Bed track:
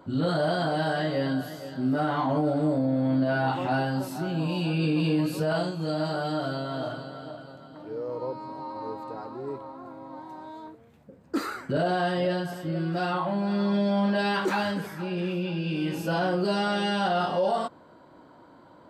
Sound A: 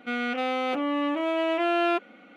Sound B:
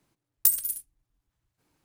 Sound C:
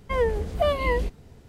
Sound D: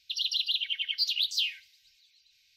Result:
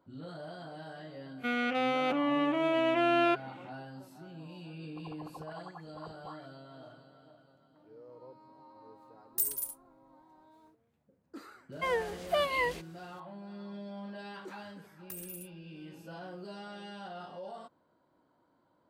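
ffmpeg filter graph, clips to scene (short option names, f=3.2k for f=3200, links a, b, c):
-filter_complex "[2:a]asplit=2[a][b];[0:a]volume=-19dB[c];[4:a]lowpass=f=3.3k:t=q:w=0.5098,lowpass=f=3.3k:t=q:w=0.6013,lowpass=f=3.3k:t=q:w=0.9,lowpass=f=3.3k:t=q:w=2.563,afreqshift=-3900[d];[a]alimiter=limit=-12dB:level=0:latency=1:release=14[e];[3:a]highpass=f=1.2k:p=1[f];[b]acrossover=split=2600[g][h];[h]acompressor=threshold=-31dB:ratio=4:attack=1:release=60[i];[g][i]amix=inputs=2:normalize=0[j];[1:a]atrim=end=2.36,asetpts=PTS-STARTPTS,volume=-2.5dB,afade=t=in:d=0.05,afade=t=out:st=2.31:d=0.05,adelay=1370[k];[d]atrim=end=2.56,asetpts=PTS-STARTPTS,volume=-15.5dB,afade=t=in:d=0.004:c=hsin,afade=t=out:st=2.556:d=0.004:c=hsin,adelay=4860[l];[e]atrim=end=1.84,asetpts=PTS-STARTPTS,volume=-5.5dB,afade=t=in:d=0.1,afade=t=out:st=1.74:d=0.1,adelay=8930[m];[f]atrim=end=1.48,asetpts=PTS-STARTPTS,afade=t=in:d=0.004:c=hsin,afade=t=out:st=1.476:d=0.004:c=hsin,adelay=11720[n];[j]atrim=end=1.84,asetpts=PTS-STARTPTS,volume=-9.5dB,afade=t=in:d=0.004:c=hsin,afade=t=out:st=1.836:d=0.004:c=hsin,adelay=14650[o];[c][k][l][m][n][o]amix=inputs=6:normalize=0"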